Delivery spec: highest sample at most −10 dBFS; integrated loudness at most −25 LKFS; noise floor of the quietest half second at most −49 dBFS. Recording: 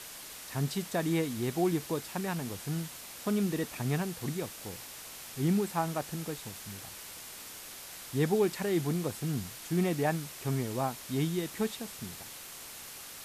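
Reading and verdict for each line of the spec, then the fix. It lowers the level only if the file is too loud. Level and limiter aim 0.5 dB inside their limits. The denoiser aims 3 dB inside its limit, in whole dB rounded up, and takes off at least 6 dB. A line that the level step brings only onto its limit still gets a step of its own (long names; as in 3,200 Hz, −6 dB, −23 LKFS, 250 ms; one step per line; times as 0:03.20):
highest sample −17.0 dBFS: in spec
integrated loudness −34.0 LKFS: in spec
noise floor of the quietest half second −46 dBFS: out of spec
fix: broadband denoise 6 dB, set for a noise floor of −46 dBFS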